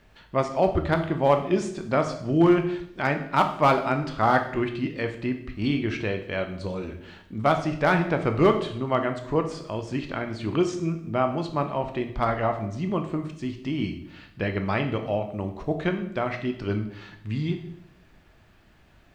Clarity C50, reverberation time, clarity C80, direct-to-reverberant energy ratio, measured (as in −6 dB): 10.0 dB, 0.70 s, 12.5 dB, 5.5 dB